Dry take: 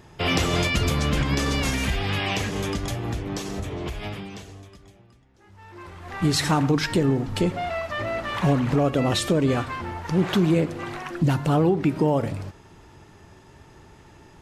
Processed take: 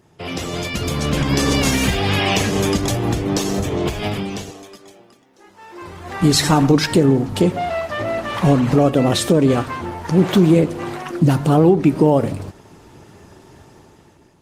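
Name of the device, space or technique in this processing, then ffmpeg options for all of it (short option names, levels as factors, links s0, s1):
video call: -filter_complex "[0:a]asettb=1/sr,asplit=3[s0][s1][s2];[s0]atrim=end=4.504[s3];[s1]atrim=start=4.5:end=5.82,asetpts=PTS-STARTPTS,afade=t=in:d=0.004:c=qsin,afade=t=out:st=1.316:d=0.004:c=qsin,highpass=300[s4];[s2]atrim=start=5.816[s5];[s3][s4]acrossfade=d=0.004:c1=hsin:c2=qsin[s6];[s6][s5]acrossfade=d=0.004:c1=qsin:c2=hsin,highpass=f=150:p=1,equalizer=f=1800:w=0.53:g=-5.5,dynaudnorm=f=310:g=7:m=5.62,volume=0.891" -ar 48000 -c:a libopus -b:a 20k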